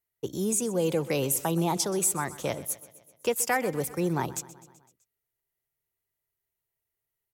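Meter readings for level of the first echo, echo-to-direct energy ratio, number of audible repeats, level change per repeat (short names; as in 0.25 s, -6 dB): -18.0 dB, -16.0 dB, 4, -4.5 dB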